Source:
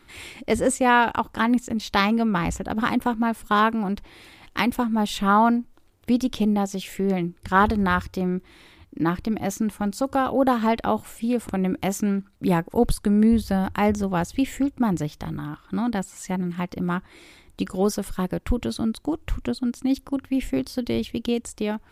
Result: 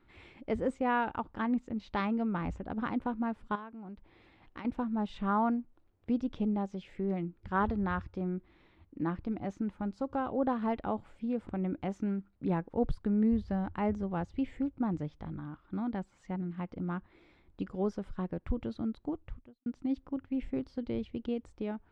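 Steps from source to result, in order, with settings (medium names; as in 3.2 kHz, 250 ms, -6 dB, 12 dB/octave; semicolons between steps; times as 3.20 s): tape spacing loss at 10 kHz 32 dB; 3.55–4.65 s: compression 10:1, threshold -33 dBFS, peak gain reduction 15.5 dB; 19.15–19.66 s: fade out quadratic; trim -9 dB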